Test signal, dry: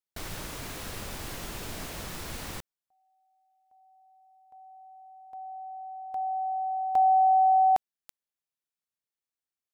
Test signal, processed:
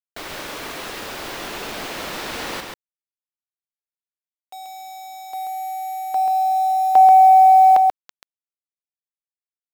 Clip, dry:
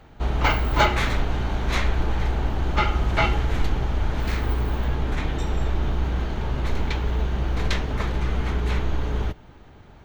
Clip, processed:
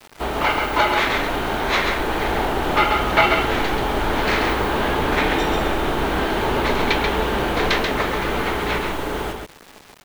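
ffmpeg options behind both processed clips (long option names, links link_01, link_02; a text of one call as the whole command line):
ffmpeg -i in.wav -filter_complex "[0:a]alimiter=limit=-14dB:level=0:latency=1:release=373,acrossover=split=250 5300:gain=0.141 1 0.178[link_01][link_02][link_03];[link_01][link_02][link_03]amix=inputs=3:normalize=0,acontrast=52,highshelf=frequency=12000:gain=4.5,dynaudnorm=framelen=130:gausssize=31:maxgain=4.5dB,acrusher=bits=6:mix=0:aa=0.000001,asplit=2[link_04][link_05];[link_05]aecho=0:1:135:0.596[link_06];[link_04][link_06]amix=inputs=2:normalize=0,volume=2.5dB" out.wav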